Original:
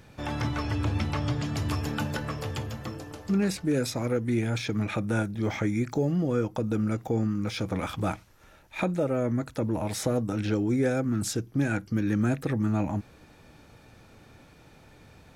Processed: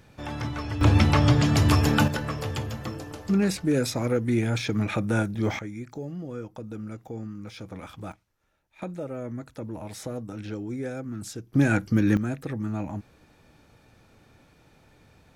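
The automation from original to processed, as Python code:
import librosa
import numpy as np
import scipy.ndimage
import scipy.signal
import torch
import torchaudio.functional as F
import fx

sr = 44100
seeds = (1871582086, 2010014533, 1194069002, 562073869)

y = fx.gain(x, sr, db=fx.steps((0.0, -2.0), (0.81, 9.5), (2.08, 2.5), (5.59, -9.5), (8.12, -18.0), (8.82, -7.5), (11.53, 5.5), (12.17, -4.0)))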